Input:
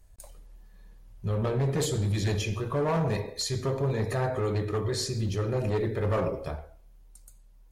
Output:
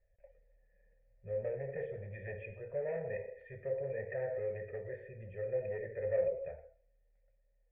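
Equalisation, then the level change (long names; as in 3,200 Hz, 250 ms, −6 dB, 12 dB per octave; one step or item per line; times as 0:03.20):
formant resonators in series e
phaser with its sweep stopped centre 1,100 Hz, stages 6
+2.0 dB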